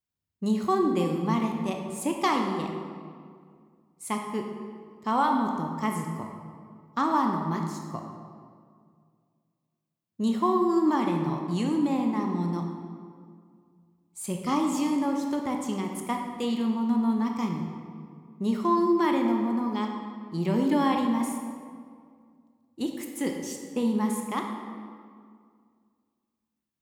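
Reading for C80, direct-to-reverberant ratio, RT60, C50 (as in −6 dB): 5.5 dB, 2.0 dB, 2.1 s, 4.0 dB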